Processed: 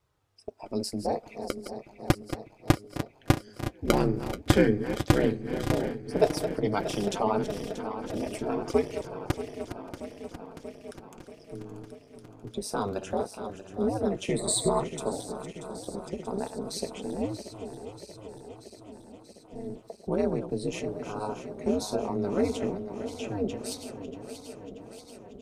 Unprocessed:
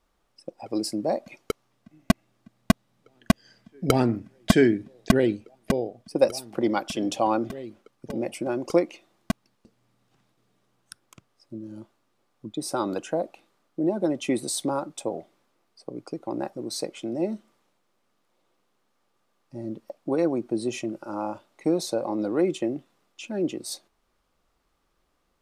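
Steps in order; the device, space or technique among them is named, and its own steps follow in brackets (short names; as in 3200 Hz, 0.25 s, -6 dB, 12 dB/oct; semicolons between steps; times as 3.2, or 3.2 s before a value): regenerating reverse delay 0.317 s, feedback 82%, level -10.5 dB; 14.37–14.83 ripple EQ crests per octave 1, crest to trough 17 dB; thinning echo 0.577 s, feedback 18%, level -24 dB; alien voice (ring modulator 100 Hz; flange 0.11 Hz, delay 1.9 ms, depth 7.9 ms, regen -51%); gain +3.5 dB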